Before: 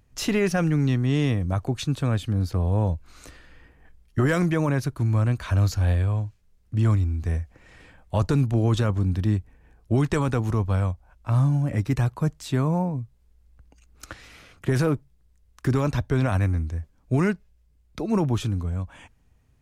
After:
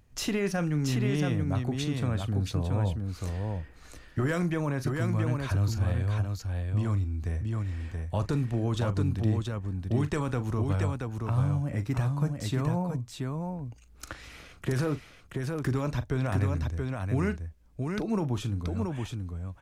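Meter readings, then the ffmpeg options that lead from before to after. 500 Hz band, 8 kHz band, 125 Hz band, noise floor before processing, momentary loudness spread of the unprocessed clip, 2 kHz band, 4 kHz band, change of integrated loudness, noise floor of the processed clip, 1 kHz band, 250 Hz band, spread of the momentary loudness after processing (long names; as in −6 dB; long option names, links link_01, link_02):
−5.0 dB, −3.0 dB, −5.0 dB, −61 dBFS, 10 LU, −4.5 dB, −3.5 dB, −5.5 dB, −53 dBFS, −5.0 dB, −5.0 dB, 9 LU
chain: -filter_complex "[0:a]acompressor=threshold=-37dB:ratio=1.5,asplit=2[link_01][link_02];[link_02]aecho=0:1:40|678:0.211|0.631[link_03];[link_01][link_03]amix=inputs=2:normalize=0"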